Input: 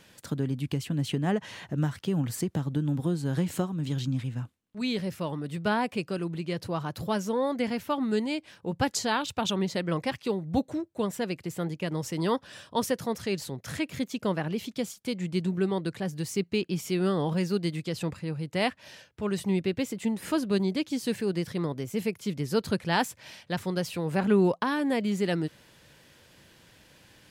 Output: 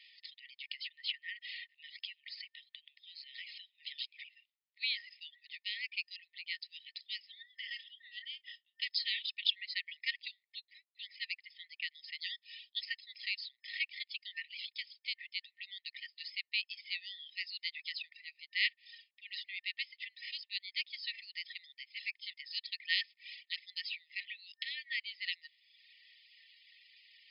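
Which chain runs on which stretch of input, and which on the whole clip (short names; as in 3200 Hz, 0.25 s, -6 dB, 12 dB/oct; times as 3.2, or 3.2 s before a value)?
7.42–8.82 ripple EQ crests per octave 1.2, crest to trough 16 dB + compressor 12:1, threshold -32 dBFS + doubler 30 ms -10 dB
whole clip: FFT band-pass 1800–5200 Hz; reverb removal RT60 0.95 s; gain +2 dB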